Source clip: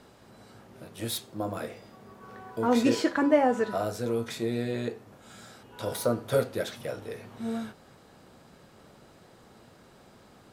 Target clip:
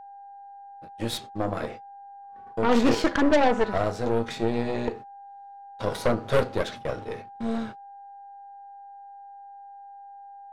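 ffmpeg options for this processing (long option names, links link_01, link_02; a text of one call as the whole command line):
ffmpeg -i in.wav -af "agate=range=-39dB:threshold=-42dB:ratio=16:detection=peak,adynamicsmooth=sensitivity=4:basefreq=5300,aeval=exprs='val(0)+0.00501*sin(2*PI*800*n/s)':channel_layout=same,aeval=exprs='0.299*(cos(1*acos(clip(val(0)/0.299,-1,1)))-cos(1*PI/2))+0.0335*(cos(5*acos(clip(val(0)/0.299,-1,1)))-cos(5*PI/2))+0.0531*(cos(8*acos(clip(val(0)/0.299,-1,1)))-cos(8*PI/2))':channel_layout=same" out.wav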